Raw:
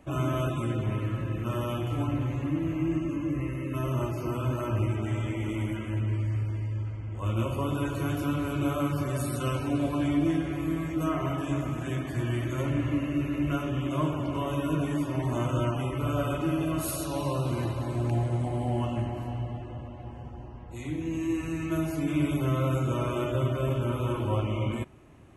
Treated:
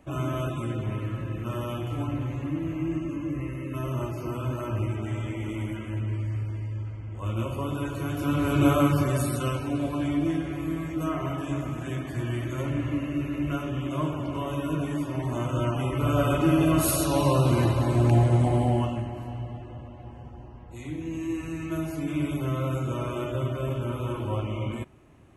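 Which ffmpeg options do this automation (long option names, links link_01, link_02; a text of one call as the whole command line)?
ffmpeg -i in.wav -af "volume=16dB,afade=type=in:start_time=8.14:duration=0.53:silence=0.354813,afade=type=out:start_time=8.67:duration=0.94:silence=0.375837,afade=type=in:start_time=15.49:duration=1.2:silence=0.398107,afade=type=out:start_time=18.54:duration=0.47:silence=0.354813" out.wav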